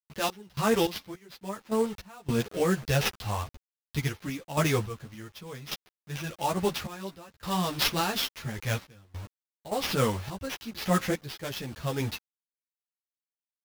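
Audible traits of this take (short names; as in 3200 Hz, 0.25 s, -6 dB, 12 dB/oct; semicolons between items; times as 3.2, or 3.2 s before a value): a quantiser's noise floor 8-bit, dither none; random-step tremolo, depth 95%; aliases and images of a low sample rate 8600 Hz, jitter 20%; a shimmering, thickened sound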